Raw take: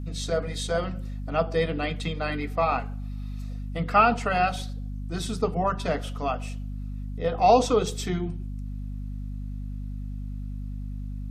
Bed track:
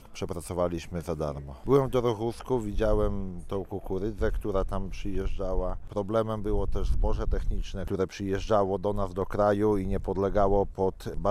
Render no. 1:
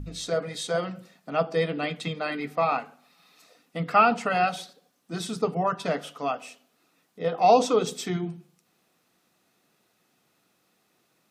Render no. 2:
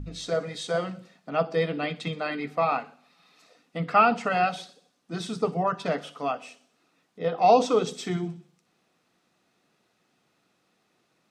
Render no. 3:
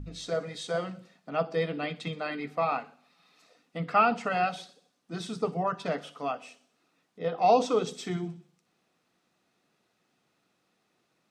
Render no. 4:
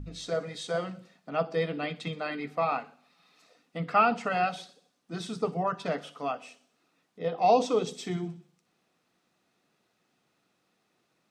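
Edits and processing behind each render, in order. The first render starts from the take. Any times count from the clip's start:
hum removal 50 Hz, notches 5
high-frequency loss of the air 53 metres; delay with a high-pass on its return 62 ms, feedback 56%, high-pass 4,700 Hz, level −13 dB
level −3.5 dB
0:07.22–0:08.18: parametric band 1,400 Hz −5.5 dB 0.5 octaves

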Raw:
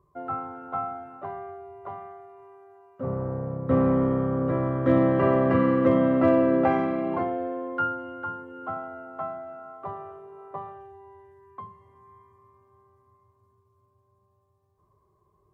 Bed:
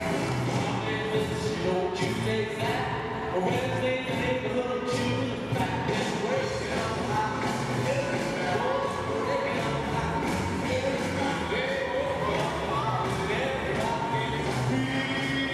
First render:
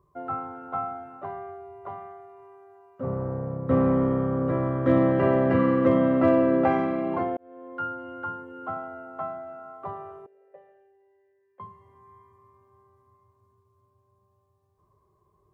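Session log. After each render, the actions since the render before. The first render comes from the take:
0:05.11–0:05.58: Butterworth band-reject 1,100 Hz, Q 6.7
0:07.37–0:08.19: fade in
0:10.26–0:11.60: formant filter e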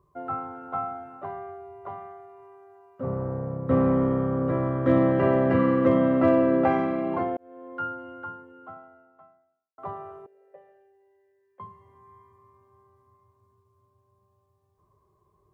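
0:07.85–0:09.78: fade out quadratic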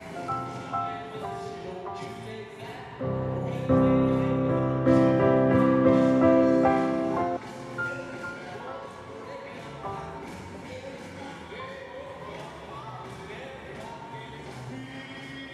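mix in bed −12 dB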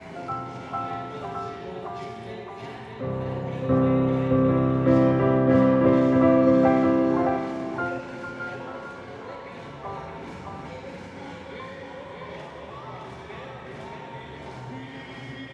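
high-frequency loss of the air 66 metres
single-tap delay 615 ms −4 dB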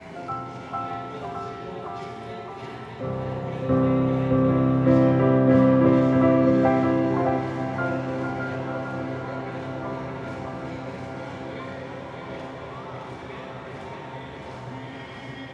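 feedback delay with all-pass diffusion 1,004 ms, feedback 75%, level −10 dB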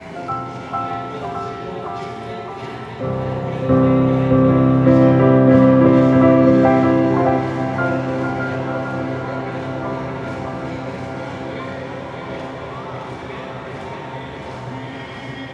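level +7 dB
brickwall limiter −2 dBFS, peak gain reduction 2 dB

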